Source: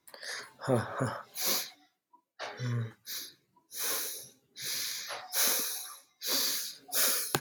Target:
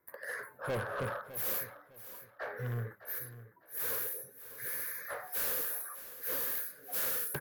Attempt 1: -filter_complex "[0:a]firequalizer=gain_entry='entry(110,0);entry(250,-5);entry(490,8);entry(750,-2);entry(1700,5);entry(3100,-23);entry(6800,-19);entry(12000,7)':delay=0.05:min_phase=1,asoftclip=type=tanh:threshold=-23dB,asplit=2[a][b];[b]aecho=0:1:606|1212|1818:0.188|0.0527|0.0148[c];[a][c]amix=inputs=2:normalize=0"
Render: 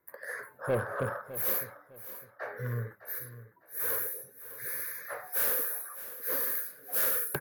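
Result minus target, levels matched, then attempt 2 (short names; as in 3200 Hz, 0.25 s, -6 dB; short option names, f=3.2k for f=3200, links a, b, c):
soft clip: distortion -6 dB
-filter_complex "[0:a]firequalizer=gain_entry='entry(110,0);entry(250,-5);entry(490,8);entry(750,-2);entry(1700,5);entry(3100,-23);entry(6800,-19);entry(12000,7)':delay=0.05:min_phase=1,asoftclip=type=tanh:threshold=-31.5dB,asplit=2[a][b];[b]aecho=0:1:606|1212|1818:0.188|0.0527|0.0148[c];[a][c]amix=inputs=2:normalize=0"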